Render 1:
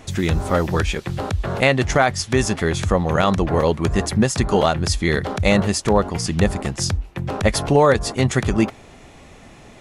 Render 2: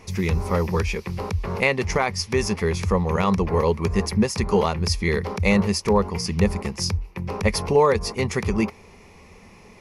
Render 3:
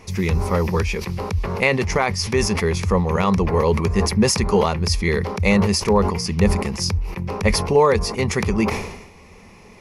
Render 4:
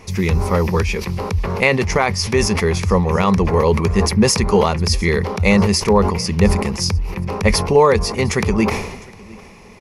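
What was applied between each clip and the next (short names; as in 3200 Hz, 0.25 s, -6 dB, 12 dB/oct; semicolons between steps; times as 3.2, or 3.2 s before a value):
ripple EQ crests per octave 0.84, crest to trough 10 dB; gain -5 dB
sustainer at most 61 dB/s; gain +2 dB
echo 0.706 s -23 dB; gain +3 dB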